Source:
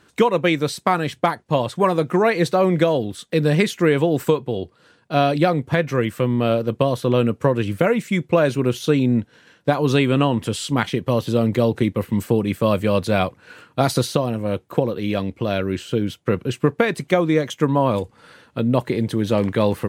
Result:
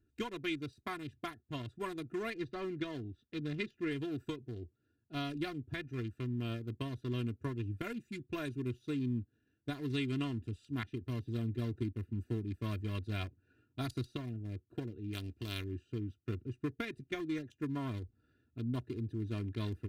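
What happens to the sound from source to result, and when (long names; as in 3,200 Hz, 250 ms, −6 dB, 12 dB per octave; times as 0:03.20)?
0:02.34–0:03.91: low-pass filter 4,000 Hz
0:07.84–0:08.59: high-shelf EQ 8,500 Hz +7.5 dB
0:15.12–0:15.63: compressing power law on the bin magnitudes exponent 0.6
whole clip: adaptive Wiener filter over 41 samples; guitar amp tone stack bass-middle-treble 6-0-2; comb filter 2.9 ms, depth 81%; level +1.5 dB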